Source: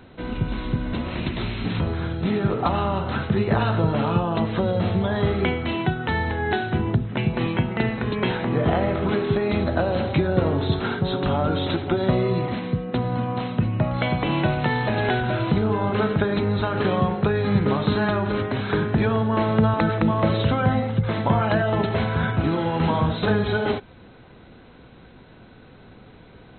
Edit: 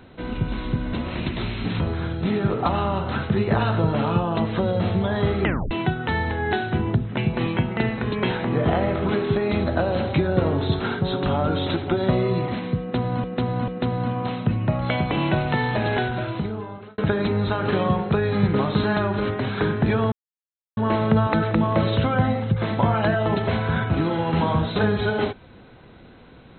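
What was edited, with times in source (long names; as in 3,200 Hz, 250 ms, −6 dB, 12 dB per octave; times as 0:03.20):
0:05.43: tape stop 0.28 s
0:12.80–0:13.24: repeat, 3 plays
0:14.97–0:16.10: fade out
0:19.24: splice in silence 0.65 s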